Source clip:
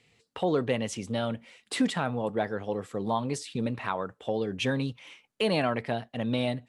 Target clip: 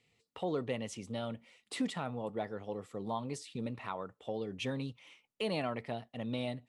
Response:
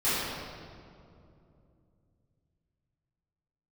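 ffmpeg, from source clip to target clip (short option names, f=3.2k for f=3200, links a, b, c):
-af "bandreject=f=1.6k:w=7.7,volume=-8.5dB"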